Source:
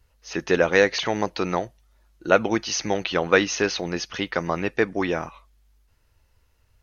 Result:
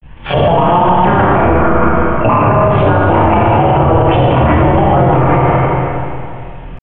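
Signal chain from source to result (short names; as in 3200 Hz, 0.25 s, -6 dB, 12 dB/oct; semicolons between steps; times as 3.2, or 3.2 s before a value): octaver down 2 oct, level +4 dB; steep low-pass 1700 Hz 72 dB/oct; low shelf 320 Hz -3 dB; de-hum 50.49 Hz, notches 35; compressor 12:1, threshold -25 dBFS, peak gain reduction 13.5 dB; pitch shift +10.5 st; grains 0.133 s, grains 20/s, spray 19 ms, pitch spread up and down by 0 st; treble ducked by the level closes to 1100 Hz, closed at -33 dBFS; Schroeder reverb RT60 2.4 s, combs from 27 ms, DRR -5 dB; maximiser +30 dB; gain -1 dB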